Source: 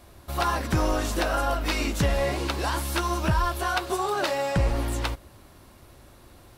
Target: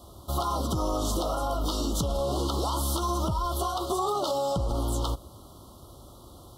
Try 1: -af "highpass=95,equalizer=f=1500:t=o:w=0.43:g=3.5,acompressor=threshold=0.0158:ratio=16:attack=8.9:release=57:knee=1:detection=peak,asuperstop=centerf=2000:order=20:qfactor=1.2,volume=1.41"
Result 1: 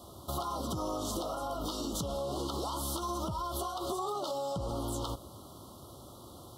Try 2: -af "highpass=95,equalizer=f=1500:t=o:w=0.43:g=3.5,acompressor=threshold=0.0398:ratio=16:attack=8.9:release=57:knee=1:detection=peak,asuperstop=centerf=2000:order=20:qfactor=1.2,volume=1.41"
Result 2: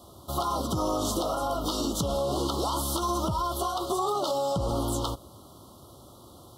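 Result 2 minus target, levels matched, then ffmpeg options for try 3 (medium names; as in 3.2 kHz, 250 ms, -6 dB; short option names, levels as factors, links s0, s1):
125 Hz band -3.0 dB
-af "highpass=37,equalizer=f=1500:t=o:w=0.43:g=3.5,acompressor=threshold=0.0398:ratio=16:attack=8.9:release=57:knee=1:detection=peak,asuperstop=centerf=2000:order=20:qfactor=1.2,volume=1.41"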